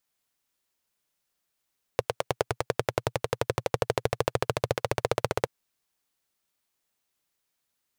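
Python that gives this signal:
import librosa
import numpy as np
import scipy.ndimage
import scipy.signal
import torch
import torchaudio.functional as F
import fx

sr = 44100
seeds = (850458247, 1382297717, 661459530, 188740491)

y = fx.engine_single_rev(sr, seeds[0], length_s=3.48, rpm=1100, resonances_hz=(120.0, 470.0), end_rpm=1900)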